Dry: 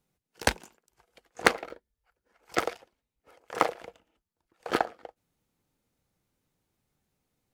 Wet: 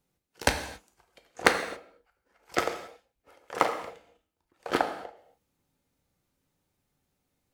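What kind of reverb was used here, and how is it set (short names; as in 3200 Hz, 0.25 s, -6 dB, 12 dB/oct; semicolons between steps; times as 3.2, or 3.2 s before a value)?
non-linear reverb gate 0.3 s falling, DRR 5.5 dB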